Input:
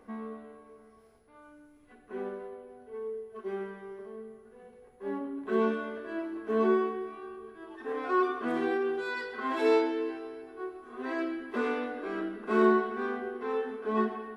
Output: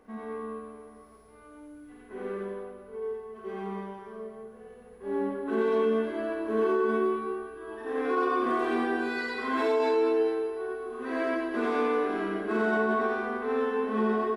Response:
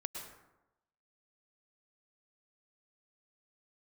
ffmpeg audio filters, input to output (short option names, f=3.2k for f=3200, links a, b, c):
-filter_complex "[0:a]aecho=1:1:50|107.5|173.6|249.7|337.1:0.631|0.398|0.251|0.158|0.1,asplit=2[a][b];[1:a]atrim=start_sample=2205,adelay=88[c];[b][c]afir=irnorm=-1:irlink=0,volume=3.5dB[d];[a][d]amix=inputs=2:normalize=0,alimiter=limit=-16dB:level=0:latency=1:release=47,volume=-2dB"